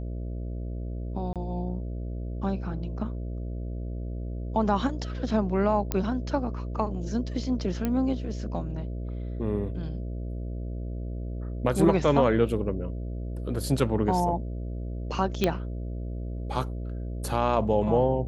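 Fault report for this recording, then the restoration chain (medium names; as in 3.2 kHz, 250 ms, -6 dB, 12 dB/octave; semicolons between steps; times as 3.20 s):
buzz 60 Hz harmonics 11 -33 dBFS
1.33–1.36 s: dropout 27 ms
5.92 s: pop -11 dBFS
7.85 s: pop -15 dBFS
15.44 s: pop -10 dBFS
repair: de-click; de-hum 60 Hz, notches 11; interpolate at 1.33 s, 27 ms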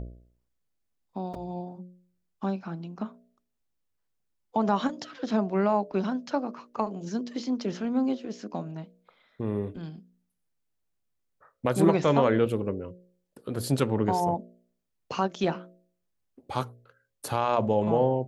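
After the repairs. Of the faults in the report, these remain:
nothing left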